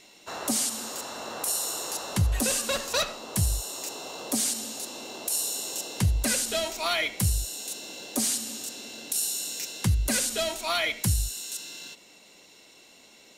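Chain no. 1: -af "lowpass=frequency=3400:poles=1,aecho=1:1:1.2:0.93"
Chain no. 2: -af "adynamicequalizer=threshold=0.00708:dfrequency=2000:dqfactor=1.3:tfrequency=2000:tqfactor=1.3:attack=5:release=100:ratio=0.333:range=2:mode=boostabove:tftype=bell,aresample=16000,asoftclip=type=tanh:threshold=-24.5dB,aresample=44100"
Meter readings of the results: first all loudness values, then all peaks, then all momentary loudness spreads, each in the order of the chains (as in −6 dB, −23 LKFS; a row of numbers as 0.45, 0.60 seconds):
−27.5, −32.0 LKFS; −10.0, −21.0 dBFS; 15, 9 LU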